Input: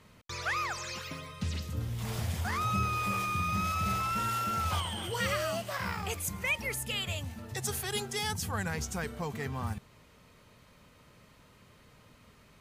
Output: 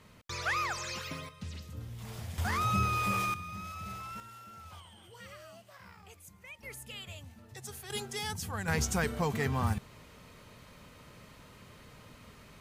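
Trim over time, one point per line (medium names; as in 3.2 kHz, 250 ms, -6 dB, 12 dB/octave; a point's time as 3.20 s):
+0.5 dB
from 1.29 s -8 dB
from 2.38 s +1 dB
from 3.34 s -11 dB
from 4.20 s -18.5 dB
from 6.63 s -10.5 dB
from 7.90 s -3.5 dB
from 8.68 s +5 dB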